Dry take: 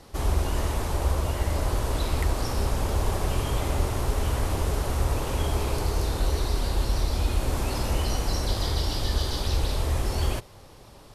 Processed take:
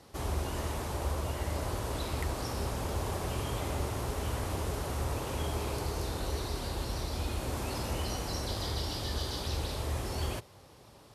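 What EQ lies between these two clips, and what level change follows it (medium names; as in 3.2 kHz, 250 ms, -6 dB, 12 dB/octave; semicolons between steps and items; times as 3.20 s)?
high-pass 70 Hz; -5.5 dB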